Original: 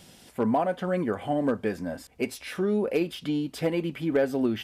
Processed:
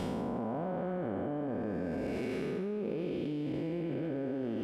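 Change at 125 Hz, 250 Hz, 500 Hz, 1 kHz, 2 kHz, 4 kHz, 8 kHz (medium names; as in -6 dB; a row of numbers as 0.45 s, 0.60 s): -4.5 dB, -6.5 dB, -8.0 dB, -9.5 dB, -11.0 dB, -13.0 dB, under -15 dB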